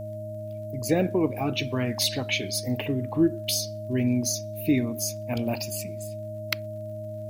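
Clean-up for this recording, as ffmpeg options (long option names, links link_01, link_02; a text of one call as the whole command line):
ffmpeg -i in.wav -af "adeclick=threshold=4,bandreject=frequency=107:width_type=h:width=4,bandreject=frequency=214:width_type=h:width=4,bandreject=frequency=321:width_type=h:width=4,bandreject=frequency=620:width=30,agate=range=-21dB:threshold=-28dB" out.wav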